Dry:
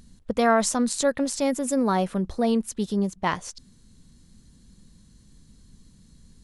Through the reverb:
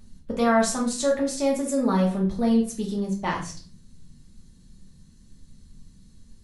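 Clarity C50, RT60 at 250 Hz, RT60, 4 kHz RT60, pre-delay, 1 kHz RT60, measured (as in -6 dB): 8.0 dB, 0.70 s, 0.45 s, 0.35 s, 3 ms, 0.40 s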